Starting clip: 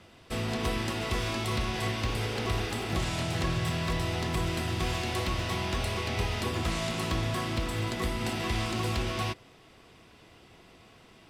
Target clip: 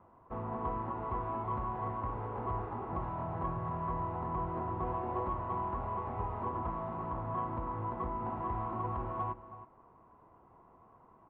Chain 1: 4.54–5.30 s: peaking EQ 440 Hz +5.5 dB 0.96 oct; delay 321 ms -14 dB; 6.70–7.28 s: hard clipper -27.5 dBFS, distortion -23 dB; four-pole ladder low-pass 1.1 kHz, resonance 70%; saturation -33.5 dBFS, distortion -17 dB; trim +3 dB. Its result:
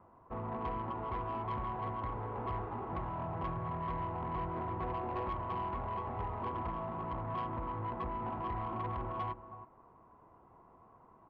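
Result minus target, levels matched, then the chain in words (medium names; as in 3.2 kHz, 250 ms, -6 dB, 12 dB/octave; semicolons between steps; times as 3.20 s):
saturation: distortion +16 dB
4.54–5.30 s: peaking EQ 440 Hz +5.5 dB 0.96 oct; delay 321 ms -14 dB; 6.70–7.28 s: hard clipper -27.5 dBFS, distortion -23 dB; four-pole ladder low-pass 1.1 kHz, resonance 70%; saturation -23.5 dBFS, distortion -33 dB; trim +3 dB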